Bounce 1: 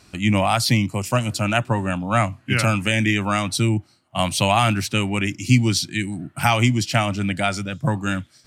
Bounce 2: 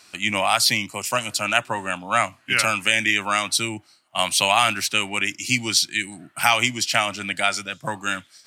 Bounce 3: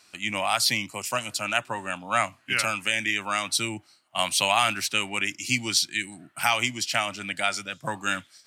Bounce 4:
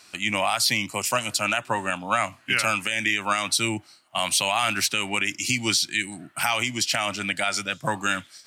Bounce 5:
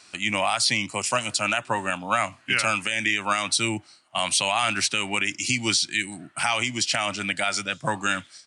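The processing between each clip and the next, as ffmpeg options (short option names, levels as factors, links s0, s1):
-af "highpass=f=1300:p=1,volume=1.68"
-af "dynaudnorm=f=200:g=5:m=3.76,volume=0.473"
-af "alimiter=limit=0.15:level=0:latency=1:release=130,volume=2"
-af "aresample=22050,aresample=44100"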